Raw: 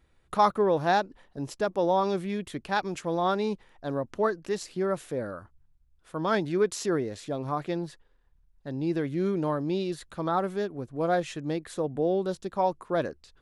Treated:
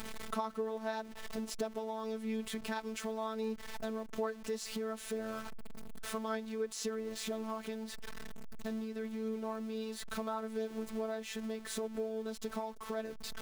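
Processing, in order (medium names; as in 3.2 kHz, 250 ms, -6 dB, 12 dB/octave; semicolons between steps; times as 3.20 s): jump at every zero crossing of -37.5 dBFS; compression 6:1, threshold -36 dBFS, peak gain reduction 18 dB; robot voice 221 Hz; trim +2.5 dB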